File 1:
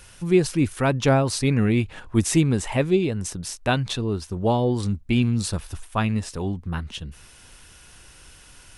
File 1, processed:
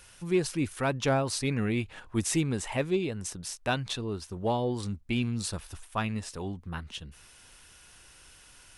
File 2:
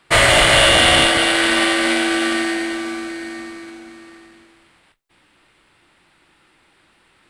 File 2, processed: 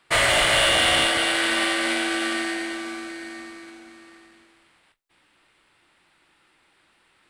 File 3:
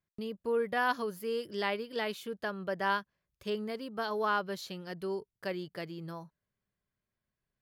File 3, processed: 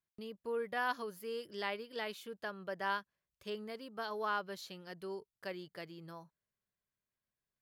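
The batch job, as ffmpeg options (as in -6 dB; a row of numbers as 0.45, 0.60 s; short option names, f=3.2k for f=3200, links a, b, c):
-filter_complex "[0:a]lowshelf=f=380:g=-5.5,asplit=2[a][b];[b]asoftclip=type=hard:threshold=-16dB,volume=-7dB[c];[a][c]amix=inputs=2:normalize=0,volume=-8dB"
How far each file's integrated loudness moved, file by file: -8.0, -6.5, -6.0 LU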